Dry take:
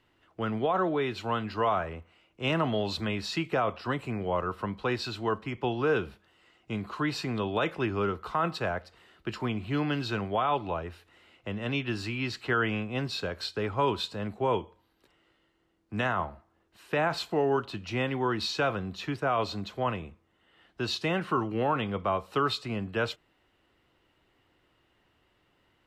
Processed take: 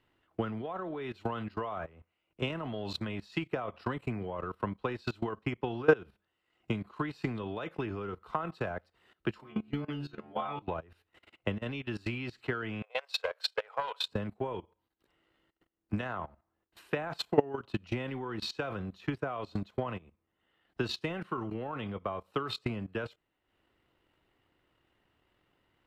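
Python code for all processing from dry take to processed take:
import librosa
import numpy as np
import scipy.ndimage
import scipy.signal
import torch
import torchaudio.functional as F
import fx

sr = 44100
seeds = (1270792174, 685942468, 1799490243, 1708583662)

y = fx.chain(x, sr, fx.stiff_resonator(f0_hz=71.0, decay_s=0.61, stiffness=0.002),
    fx.env_flatten(amount_pct=50), at=(9.39, 10.62))
y = fx.chain(y, sr, fx.brickwall_highpass(low_hz=440.0),
    fx.doppler_dist(depth_ms=0.11), at=(12.82, 14.08))
y = fx.peak_eq(y, sr, hz=6100.0, db=-4.0, octaves=1.3)
y = fx.level_steps(y, sr, step_db=12)
y = fx.transient(y, sr, attack_db=11, sustain_db=-8)
y = y * 10.0 ** (-2.0 / 20.0)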